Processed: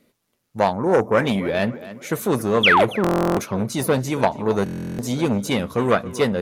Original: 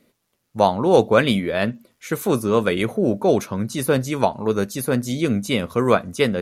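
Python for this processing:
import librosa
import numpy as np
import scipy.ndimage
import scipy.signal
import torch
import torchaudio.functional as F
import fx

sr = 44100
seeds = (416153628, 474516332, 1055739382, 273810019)

p1 = fx.self_delay(x, sr, depth_ms=0.066)
p2 = fx.spec_box(p1, sr, start_s=0.73, length_s=0.53, low_hz=2400.0, high_hz=5000.0, gain_db=-21)
p3 = fx.rider(p2, sr, range_db=10, speed_s=0.5)
p4 = p2 + (p3 * librosa.db_to_amplitude(0.0))
p5 = fx.spec_paint(p4, sr, seeds[0], shape='fall', start_s=2.63, length_s=0.22, low_hz=440.0, high_hz=3600.0, level_db=-8.0)
p6 = p5 + fx.echo_tape(p5, sr, ms=277, feedback_pct=45, wet_db=-15.5, lp_hz=2700.0, drive_db=1.0, wow_cents=15, dry=0)
p7 = fx.buffer_glitch(p6, sr, at_s=(3.02, 4.64), block=1024, repeats=14)
p8 = fx.transformer_sat(p7, sr, knee_hz=970.0)
y = p8 * librosa.db_to_amplitude(-5.0)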